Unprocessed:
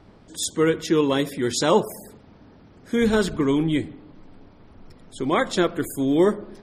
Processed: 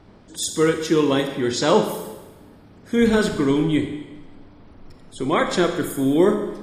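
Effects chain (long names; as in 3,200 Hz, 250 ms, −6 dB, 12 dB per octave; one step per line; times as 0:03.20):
0:01.27–0:01.76: low-pass that shuts in the quiet parts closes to 2,300 Hz, open at −16 dBFS
four-comb reverb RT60 1.1 s, combs from 30 ms, DRR 6 dB
level +1 dB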